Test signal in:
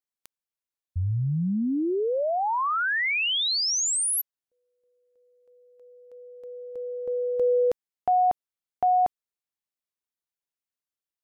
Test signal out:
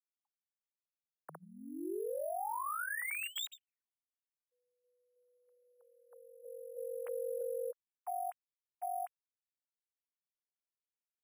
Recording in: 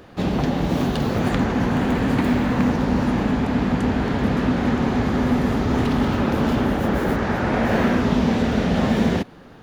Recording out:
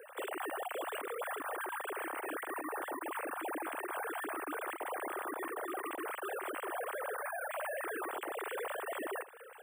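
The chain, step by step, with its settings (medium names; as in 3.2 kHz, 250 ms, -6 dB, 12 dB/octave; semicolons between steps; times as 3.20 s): formants replaced by sine waves; high-pass 540 Hz 12 dB/octave; dynamic bell 1.3 kHz, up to +4 dB, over -34 dBFS, Q 1; compression 4:1, threshold -27 dBFS; peak limiter -26 dBFS; careless resampling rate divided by 4×, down filtered, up hold; trim -6.5 dB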